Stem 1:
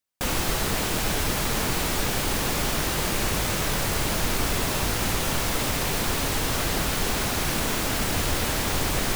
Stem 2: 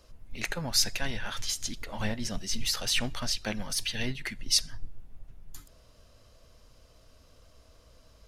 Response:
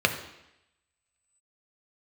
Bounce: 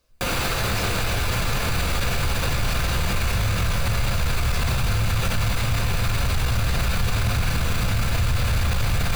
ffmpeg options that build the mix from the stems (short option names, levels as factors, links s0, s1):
-filter_complex "[0:a]lowshelf=f=330:g=9,acrossover=split=630|1800|3600[s0][s1][s2][s3];[s0]acompressor=threshold=0.0141:ratio=4[s4];[s1]acompressor=threshold=0.0112:ratio=4[s5];[s2]acompressor=threshold=0.00708:ratio=4[s6];[s3]acompressor=threshold=0.0141:ratio=4[s7];[s4][s5][s6][s7]amix=inputs=4:normalize=0,volume=0.841,asplit=2[s8][s9];[s9]volume=0.473[s10];[1:a]volume=0.126[s11];[2:a]atrim=start_sample=2205[s12];[s10][s12]afir=irnorm=-1:irlink=0[s13];[s8][s11][s13]amix=inputs=3:normalize=0,asubboost=boost=8:cutoff=110,acontrast=79,alimiter=limit=0.188:level=0:latency=1:release=45"